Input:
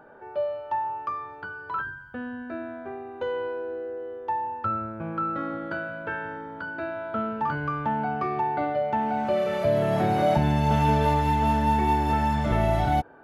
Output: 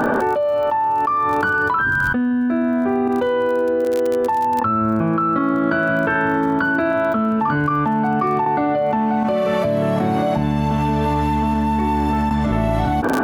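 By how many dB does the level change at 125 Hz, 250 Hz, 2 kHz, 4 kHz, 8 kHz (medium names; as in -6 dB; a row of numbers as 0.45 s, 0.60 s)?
+4.0 dB, +11.5 dB, +13.0 dB, +4.5 dB, no reading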